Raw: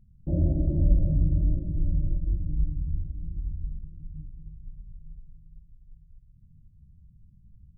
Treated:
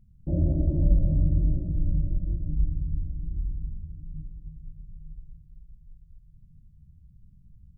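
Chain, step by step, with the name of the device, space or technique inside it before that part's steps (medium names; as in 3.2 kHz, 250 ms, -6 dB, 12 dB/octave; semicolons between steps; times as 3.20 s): saturated reverb return (on a send at -10 dB: reverberation RT60 3.1 s, pre-delay 63 ms + saturation -16.5 dBFS, distortion -14 dB)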